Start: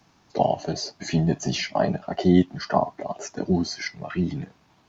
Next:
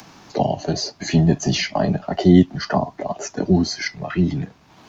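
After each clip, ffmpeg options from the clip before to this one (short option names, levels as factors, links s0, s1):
-filter_complex "[0:a]acrossover=split=350|3000[s0][s1][s2];[s1]acompressor=threshold=0.0501:ratio=3[s3];[s0][s3][s2]amix=inputs=3:normalize=0,lowshelf=f=78:g=5,acrossover=split=140[s4][s5];[s5]acompressor=mode=upward:threshold=0.00891:ratio=2.5[s6];[s4][s6]amix=inputs=2:normalize=0,volume=1.88"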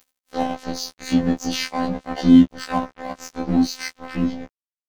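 -af "afftfilt=real='hypot(re,im)*cos(PI*b)':imag='0':win_size=2048:overlap=0.75,aeval=exprs='sgn(val(0))*max(abs(val(0))-0.0335,0)':c=same,afftfilt=real='re*1.73*eq(mod(b,3),0)':imag='im*1.73*eq(mod(b,3),0)':win_size=2048:overlap=0.75,volume=1.78"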